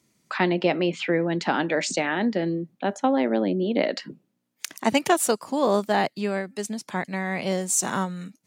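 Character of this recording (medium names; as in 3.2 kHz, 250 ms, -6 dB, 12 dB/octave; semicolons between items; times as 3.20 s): noise floor -74 dBFS; spectral tilt -4.0 dB/octave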